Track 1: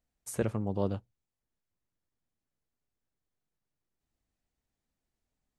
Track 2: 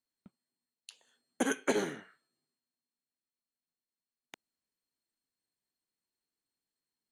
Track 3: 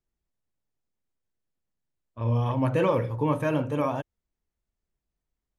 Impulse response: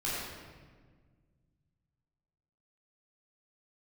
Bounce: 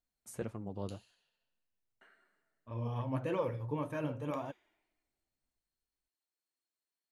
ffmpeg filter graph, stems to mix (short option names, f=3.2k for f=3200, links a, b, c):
-filter_complex "[0:a]volume=-5dB[a];[1:a]highpass=350,volume=-4dB,asplit=3[b][c][d];[b]atrim=end=1.15,asetpts=PTS-STARTPTS,afade=t=out:st=1.146:d=0.004:c=hsin[e];[c]atrim=start=1.15:end=2.01,asetpts=PTS-STARTPTS,volume=0[f];[d]atrim=start=2.01,asetpts=PTS-STARTPTS,afade=t=in:d=0.004:c=hsin[g];[e][f][g]concat=n=3:v=0:a=1,asplit=2[h][i];[i]volume=-6.5dB[j];[2:a]adelay=500,volume=-7.5dB[k];[3:a]atrim=start_sample=2205[l];[j][l]afir=irnorm=-1:irlink=0[m];[a][h][k][m]amix=inputs=4:normalize=0,flanger=delay=2.8:depth=6.4:regen=58:speed=1.8:shape=sinusoidal"